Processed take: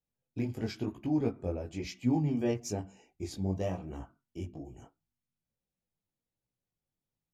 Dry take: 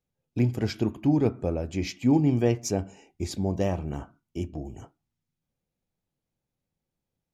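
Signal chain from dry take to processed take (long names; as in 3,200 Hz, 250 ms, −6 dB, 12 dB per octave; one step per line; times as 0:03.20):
multi-voice chorus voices 2, 1 Hz, delay 19 ms, depth 3 ms
level −4.5 dB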